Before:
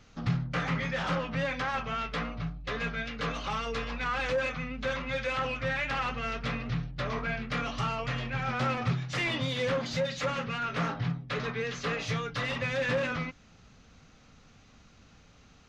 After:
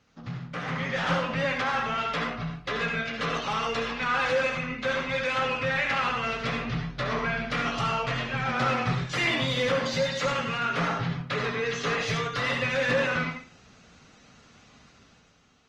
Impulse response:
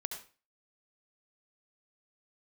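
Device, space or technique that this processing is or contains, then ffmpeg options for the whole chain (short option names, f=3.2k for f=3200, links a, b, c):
far-field microphone of a smart speaker: -filter_complex "[1:a]atrim=start_sample=2205[a];[0:a][a]afir=irnorm=-1:irlink=0,highpass=f=140:p=1,dynaudnorm=f=130:g=11:m=9dB,volume=-3.5dB" -ar 48000 -c:a libopus -b:a 24k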